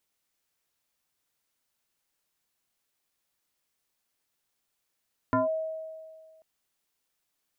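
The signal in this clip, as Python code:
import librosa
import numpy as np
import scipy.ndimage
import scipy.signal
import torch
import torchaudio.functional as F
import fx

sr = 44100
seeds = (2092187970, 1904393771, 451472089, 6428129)

y = fx.fm2(sr, length_s=1.09, level_db=-20.0, carrier_hz=638.0, ratio=0.59, index=1.9, index_s=0.15, decay_s=1.84, shape='linear')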